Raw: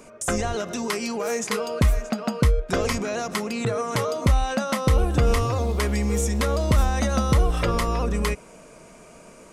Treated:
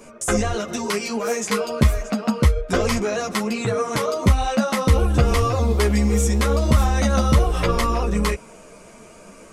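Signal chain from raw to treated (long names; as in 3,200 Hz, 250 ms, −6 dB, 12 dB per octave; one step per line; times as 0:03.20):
string-ensemble chorus
level +6 dB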